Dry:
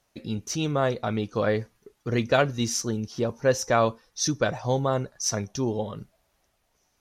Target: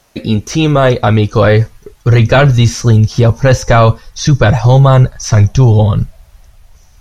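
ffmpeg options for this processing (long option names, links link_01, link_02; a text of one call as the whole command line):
ffmpeg -i in.wav -filter_complex "[0:a]asubboost=boost=11.5:cutoff=90,acrossover=split=3400[link_01][link_02];[link_02]acompressor=threshold=-44dB:ratio=4:attack=1:release=60[link_03];[link_01][link_03]amix=inputs=2:normalize=0,apsyclip=20.5dB,volume=-2dB" out.wav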